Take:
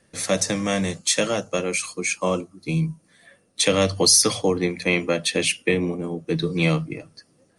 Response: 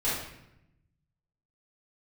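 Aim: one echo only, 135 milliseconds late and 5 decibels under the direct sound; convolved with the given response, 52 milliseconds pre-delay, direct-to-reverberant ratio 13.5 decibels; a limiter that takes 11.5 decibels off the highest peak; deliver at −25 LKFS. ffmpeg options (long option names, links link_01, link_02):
-filter_complex "[0:a]alimiter=limit=-15.5dB:level=0:latency=1,aecho=1:1:135:0.562,asplit=2[link_01][link_02];[1:a]atrim=start_sample=2205,adelay=52[link_03];[link_02][link_03]afir=irnorm=-1:irlink=0,volume=-23dB[link_04];[link_01][link_04]amix=inputs=2:normalize=0"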